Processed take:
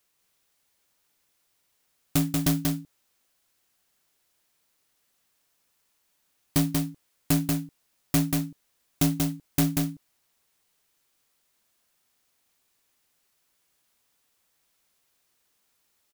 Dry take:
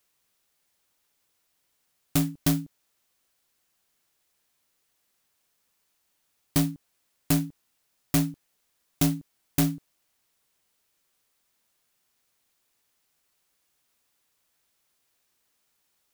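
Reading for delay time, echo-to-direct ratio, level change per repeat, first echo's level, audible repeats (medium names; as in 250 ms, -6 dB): 186 ms, -3.5 dB, no regular repeats, -3.5 dB, 1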